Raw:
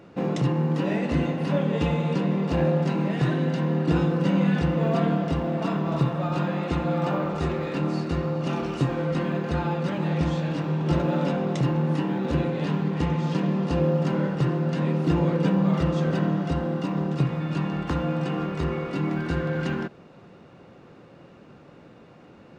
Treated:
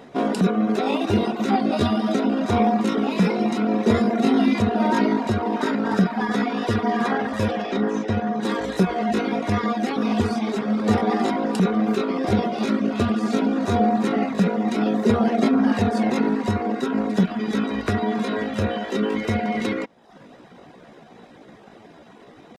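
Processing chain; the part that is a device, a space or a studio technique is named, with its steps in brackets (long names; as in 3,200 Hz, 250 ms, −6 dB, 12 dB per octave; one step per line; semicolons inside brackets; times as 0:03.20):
reverb reduction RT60 0.65 s
0:07.64–0:08.43: high-frequency loss of the air 170 metres
chipmunk voice (pitch shifter +5.5 semitones)
level +5 dB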